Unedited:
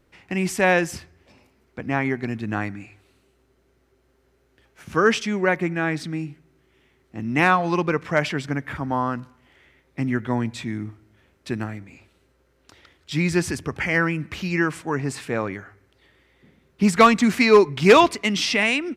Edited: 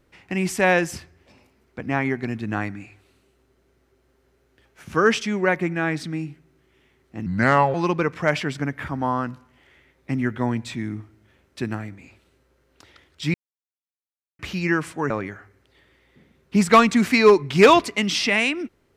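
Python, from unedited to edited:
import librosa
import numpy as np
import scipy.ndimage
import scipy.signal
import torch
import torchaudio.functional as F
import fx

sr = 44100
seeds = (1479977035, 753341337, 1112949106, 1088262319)

y = fx.edit(x, sr, fx.speed_span(start_s=7.26, length_s=0.37, speed=0.77),
    fx.silence(start_s=13.23, length_s=1.05),
    fx.cut(start_s=14.99, length_s=0.38), tone=tone)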